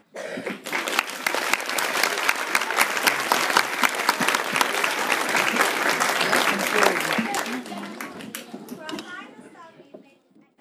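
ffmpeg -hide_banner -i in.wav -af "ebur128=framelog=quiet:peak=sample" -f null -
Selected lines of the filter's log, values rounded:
Integrated loudness:
  I:         -21.7 LUFS
  Threshold: -33.1 LUFS
Loudness range:
  LRA:         8.9 LU
  Threshold: -42.2 LUFS
  LRA low:   -29.7 LUFS
  LRA high:  -20.8 LUFS
Sample peak:
  Peak:       -1.4 dBFS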